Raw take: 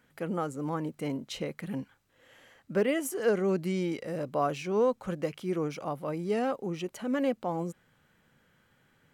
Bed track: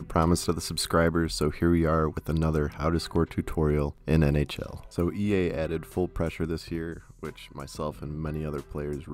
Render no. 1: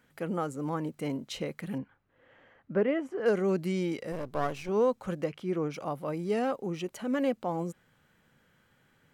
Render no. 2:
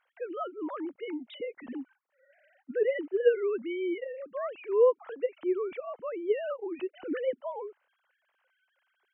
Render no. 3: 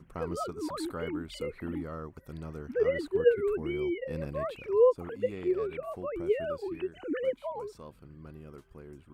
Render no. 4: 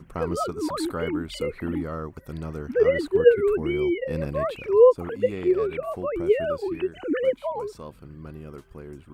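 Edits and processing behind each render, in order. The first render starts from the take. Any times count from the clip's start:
1.78–3.26 LPF 1900 Hz; 4.12–4.69 half-wave gain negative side -12 dB; 5.24–5.74 high shelf 5700 Hz -12 dB
sine-wave speech
add bed track -15.5 dB
gain +7.5 dB

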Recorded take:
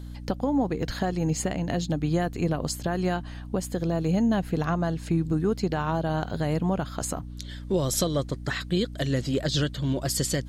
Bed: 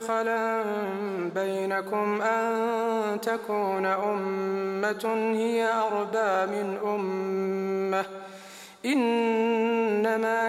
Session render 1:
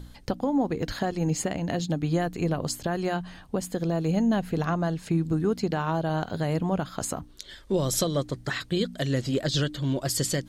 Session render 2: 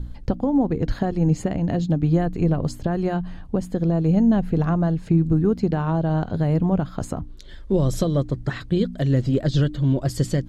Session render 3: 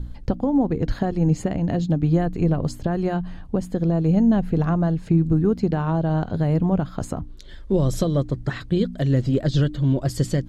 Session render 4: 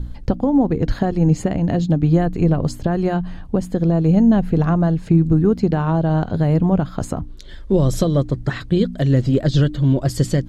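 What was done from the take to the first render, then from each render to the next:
de-hum 60 Hz, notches 5
tilt -3 dB/oct
nothing audible
gain +4 dB

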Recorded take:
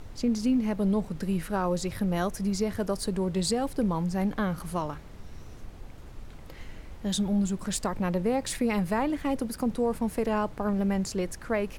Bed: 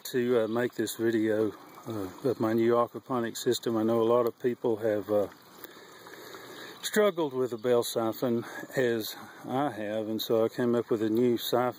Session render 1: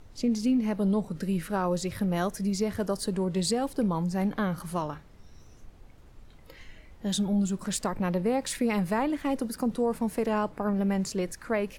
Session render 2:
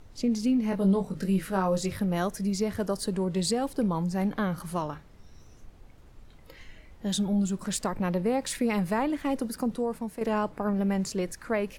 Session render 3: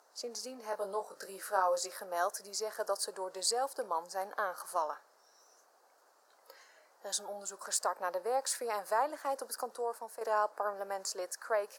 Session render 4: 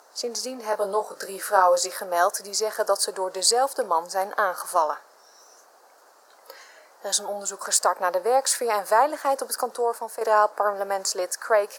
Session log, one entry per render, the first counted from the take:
noise print and reduce 8 dB
0.7–1.96 doubler 21 ms -5 dB; 9.58–10.21 fade out, to -8.5 dB
HPF 560 Hz 24 dB/oct; band shelf 2700 Hz -13.5 dB 1.1 oct
gain +12 dB

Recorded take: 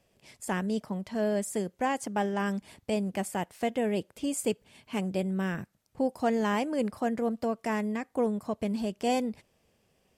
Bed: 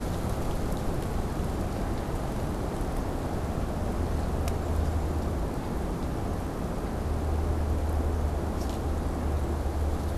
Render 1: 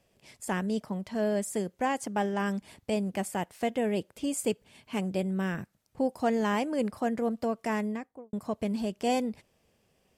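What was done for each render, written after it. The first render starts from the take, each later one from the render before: 7.79–8.33 studio fade out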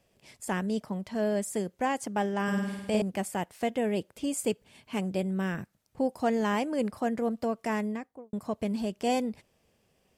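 2.43–3.02 flutter echo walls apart 8.8 m, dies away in 1.1 s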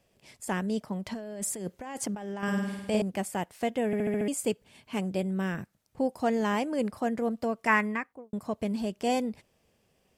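1.06–2.43 negative-ratio compressor -36 dBFS; 3.86 stutter in place 0.07 s, 6 plays; 7.67–8.13 band shelf 1600 Hz +13 dB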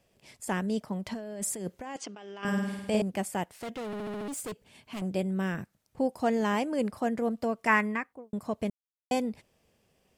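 1.96–2.45 speaker cabinet 420–6000 Hz, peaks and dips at 560 Hz -8 dB, 860 Hz -8 dB, 1800 Hz -6 dB, 2900 Hz +5 dB; 3.53–5.02 hard clip -34.5 dBFS; 8.7–9.11 mute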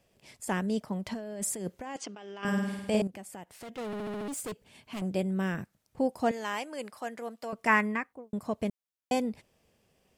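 3.07–3.78 compressor 3:1, threshold -44 dBFS; 6.31–7.53 HPF 1200 Hz 6 dB/oct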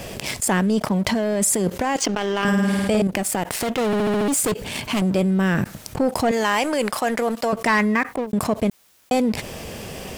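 sample leveller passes 2; fast leveller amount 70%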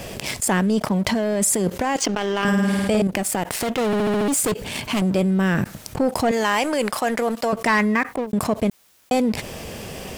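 nothing audible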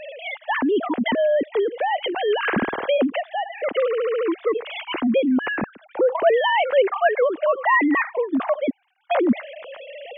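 sine-wave speech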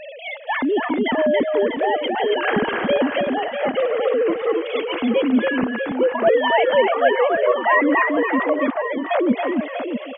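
reverse bouncing-ball echo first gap 0.28 s, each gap 1.3×, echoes 5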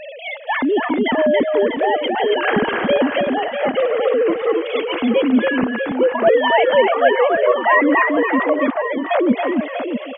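gain +2.5 dB

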